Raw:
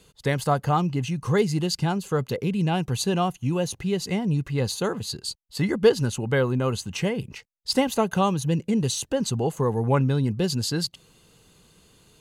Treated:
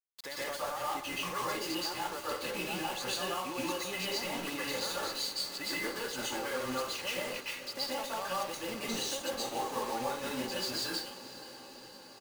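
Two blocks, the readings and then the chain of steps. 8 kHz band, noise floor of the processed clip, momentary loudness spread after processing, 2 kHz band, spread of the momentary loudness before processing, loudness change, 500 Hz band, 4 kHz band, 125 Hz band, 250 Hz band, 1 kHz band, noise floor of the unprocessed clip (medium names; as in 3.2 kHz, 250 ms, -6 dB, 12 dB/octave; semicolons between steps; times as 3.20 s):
-6.0 dB, -50 dBFS, 4 LU, -3.5 dB, 6 LU, -10.0 dB, -12.5 dB, -3.5 dB, -27.0 dB, -16.0 dB, -7.0 dB, -62 dBFS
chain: high-pass 660 Hz 12 dB/octave; peaking EQ 11 kHz -11.5 dB 1.3 oct; comb 3.5 ms, depth 47%; compression 6:1, threshold -40 dBFS, peak gain reduction 20 dB; peak limiter -32.5 dBFS, peak gain reduction 7.5 dB; bit crusher 8-bit; on a send: echo that smears into a reverb 524 ms, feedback 69%, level -14 dB; on the sum: plate-style reverb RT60 0.52 s, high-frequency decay 0.75×, pre-delay 110 ms, DRR -6.5 dB; trim +1.5 dB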